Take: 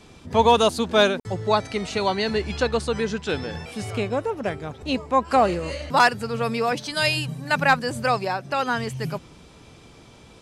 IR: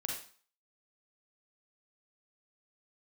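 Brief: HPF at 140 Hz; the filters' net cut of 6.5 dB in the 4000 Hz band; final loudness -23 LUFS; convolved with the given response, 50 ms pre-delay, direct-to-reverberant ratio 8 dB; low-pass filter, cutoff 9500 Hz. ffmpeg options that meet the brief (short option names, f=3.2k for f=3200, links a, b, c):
-filter_complex "[0:a]highpass=140,lowpass=9.5k,equalizer=f=4k:t=o:g=-8,asplit=2[a][b];[1:a]atrim=start_sample=2205,adelay=50[c];[b][c]afir=irnorm=-1:irlink=0,volume=-9.5dB[d];[a][d]amix=inputs=2:normalize=0,volume=0.5dB"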